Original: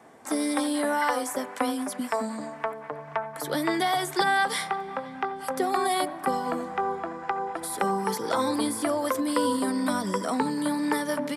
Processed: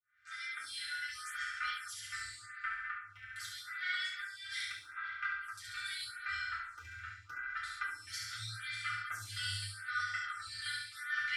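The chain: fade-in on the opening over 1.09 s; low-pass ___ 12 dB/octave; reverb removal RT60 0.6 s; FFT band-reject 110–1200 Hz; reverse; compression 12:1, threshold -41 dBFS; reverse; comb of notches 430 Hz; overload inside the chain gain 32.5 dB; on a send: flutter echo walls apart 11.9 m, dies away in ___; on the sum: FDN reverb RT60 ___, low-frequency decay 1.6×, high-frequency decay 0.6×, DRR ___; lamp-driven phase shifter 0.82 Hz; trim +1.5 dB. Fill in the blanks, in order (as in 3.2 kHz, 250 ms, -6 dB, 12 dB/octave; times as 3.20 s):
5.2 kHz, 0.93 s, 0.77 s, -6.5 dB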